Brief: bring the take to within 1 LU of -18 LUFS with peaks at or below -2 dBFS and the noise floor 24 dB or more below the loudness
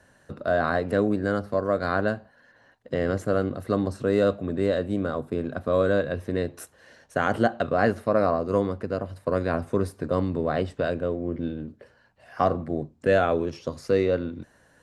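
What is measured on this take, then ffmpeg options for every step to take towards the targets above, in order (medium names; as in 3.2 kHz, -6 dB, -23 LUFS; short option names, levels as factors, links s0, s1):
loudness -26.0 LUFS; peak level -8.5 dBFS; loudness target -18.0 LUFS
-> -af "volume=2.51,alimiter=limit=0.794:level=0:latency=1"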